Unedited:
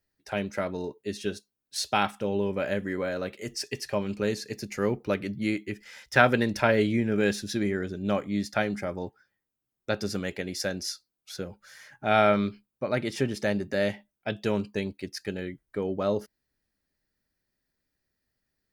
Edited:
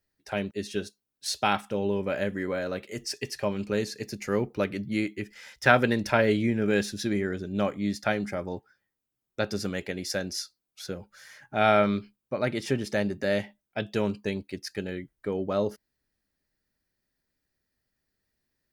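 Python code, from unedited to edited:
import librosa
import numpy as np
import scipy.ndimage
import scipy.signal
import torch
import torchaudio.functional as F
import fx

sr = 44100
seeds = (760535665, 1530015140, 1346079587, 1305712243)

y = fx.edit(x, sr, fx.cut(start_s=0.51, length_s=0.5), tone=tone)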